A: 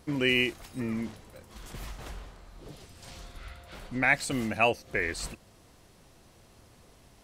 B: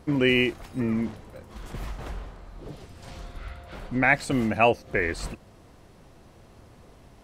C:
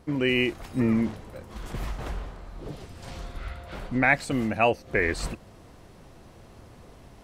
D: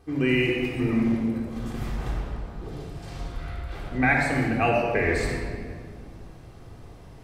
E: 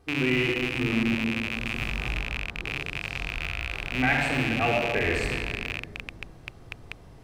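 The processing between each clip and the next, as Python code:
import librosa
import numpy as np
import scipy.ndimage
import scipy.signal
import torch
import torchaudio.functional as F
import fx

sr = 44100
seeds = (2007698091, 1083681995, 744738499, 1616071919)

y1 = fx.high_shelf(x, sr, hz=2600.0, db=-10.5)
y1 = y1 * 10.0 ** (6.5 / 20.0)
y2 = fx.rider(y1, sr, range_db=10, speed_s=0.5)
y3 = fx.room_shoebox(y2, sr, seeds[0], volume_m3=3200.0, walls='mixed', distance_m=3.7)
y3 = y3 * 10.0 ** (-4.5 / 20.0)
y4 = fx.rattle_buzz(y3, sr, strikes_db=-37.0, level_db=-14.0)
y4 = y4 * 10.0 ** (-3.0 / 20.0)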